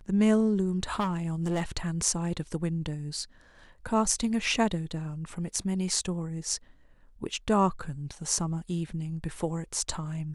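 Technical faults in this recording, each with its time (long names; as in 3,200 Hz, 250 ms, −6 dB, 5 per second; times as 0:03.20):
0:00.99–0:01.63: clipping −24.5 dBFS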